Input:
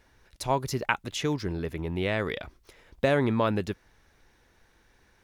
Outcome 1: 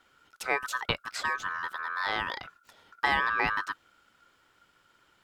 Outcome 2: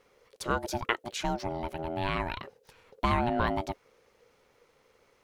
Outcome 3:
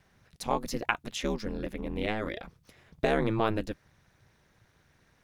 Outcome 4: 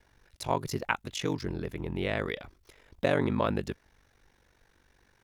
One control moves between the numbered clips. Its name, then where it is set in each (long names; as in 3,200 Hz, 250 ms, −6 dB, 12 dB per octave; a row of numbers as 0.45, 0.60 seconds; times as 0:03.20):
ring modulation, frequency: 1,400, 480, 110, 24 Hertz